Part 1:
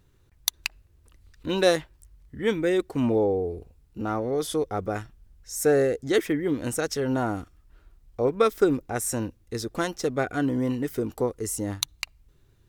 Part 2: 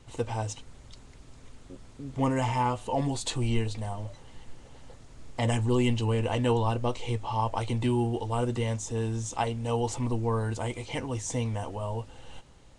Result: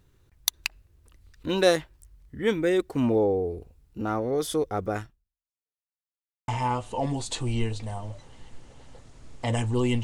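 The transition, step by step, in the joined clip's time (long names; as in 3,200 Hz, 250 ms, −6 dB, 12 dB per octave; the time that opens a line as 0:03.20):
part 1
0:05.04–0:05.76: fade out exponential
0:05.76–0:06.48: silence
0:06.48: continue with part 2 from 0:02.43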